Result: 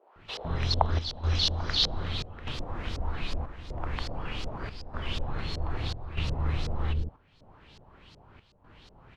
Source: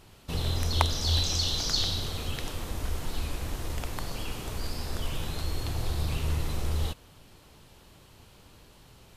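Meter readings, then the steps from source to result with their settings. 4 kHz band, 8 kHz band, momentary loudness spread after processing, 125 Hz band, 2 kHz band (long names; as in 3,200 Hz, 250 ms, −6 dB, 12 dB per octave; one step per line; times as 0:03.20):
−0.5 dB, −11.0 dB, 12 LU, −0.5 dB, +0.5 dB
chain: auto-filter low-pass saw up 2.7 Hz 470–5,300 Hz
multiband delay without the direct sound highs, lows 160 ms, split 450 Hz
square-wave tremolo 0.81 Hz, depth 65%, duty 80%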